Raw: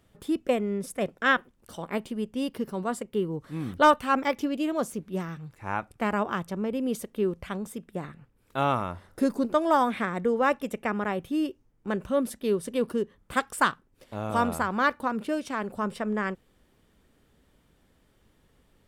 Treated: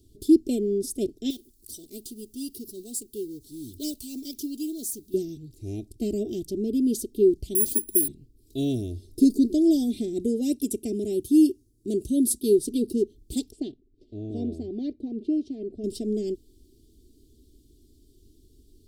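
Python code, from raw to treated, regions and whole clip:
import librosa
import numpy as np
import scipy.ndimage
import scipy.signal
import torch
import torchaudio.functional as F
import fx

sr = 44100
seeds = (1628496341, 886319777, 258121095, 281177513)

y = fx.chain(x, sr, fx.law_mismatch(coded='mu'),
    fx.pre_emphasis(coefficient=0.8), at=(1.3, 5.14))
y = fx.chain(y, sr, fx.comb(ms=2.8, depth=0.36),
    fx.resample_bad(factor=4, down='none', up='zero_stuff'), at=(7.55, 8.08))
y = fx.chain(y, sr, fx.highpass(hz=52.0, slope=12),
    fx.peak_eq(hz=10000.0, db=10.0, octaves=0.91), at=(10.2, 12.59))
y = fx.chain(y, sr, fx.lowpass(hz=1700.0, slope=12),
    fx.low_shelf(hz=340.0, db=-7.0), at=(13.52, 15.84))
y = scipy.signal.sosfilt(scipy.signal.ellip(3, 1.0, 70, [380.0, 4200.0], 'bandstop', fs=sr, output='sos'), y)
y = y + 0.75 * np.pad(y, (int(2.9 * sr / 1000.0), 0))[:len(y)]
y = y * 10.0 ** (6.0 / 20.0)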